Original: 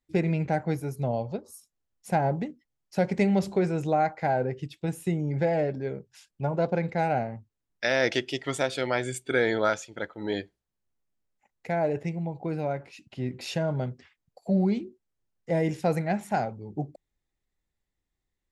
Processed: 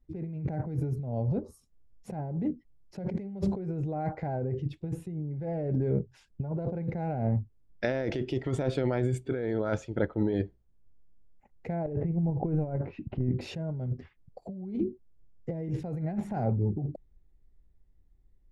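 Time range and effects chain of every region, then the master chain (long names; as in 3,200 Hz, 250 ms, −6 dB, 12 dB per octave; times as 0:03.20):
0:11.86–0:13.30: low-pass filter 1,800 Hz + compressor whose output falls as the input rises −35 dBFS, ratio −0.5
whole clip: spectral tilt −4.5 dB per octave; compressor whose output falls as the input rises −26 dBFS, ratio −1; parametric band 400 Hz +2.5 dB; level −5.5 dB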